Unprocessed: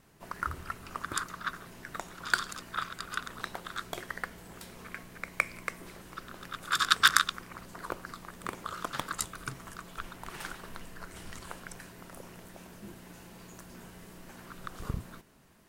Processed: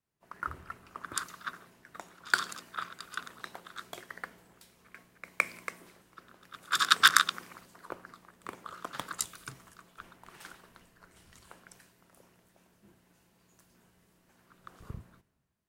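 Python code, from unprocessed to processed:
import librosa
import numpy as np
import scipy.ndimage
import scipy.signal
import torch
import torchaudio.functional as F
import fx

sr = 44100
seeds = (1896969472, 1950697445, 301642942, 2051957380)

y = fx.highpass(x, sr, hz=170.0, slope=6)
y = fx.band_widen(y, sr, depth_pct=70)
y = y * librosa.db_to_amplitude(-5.0)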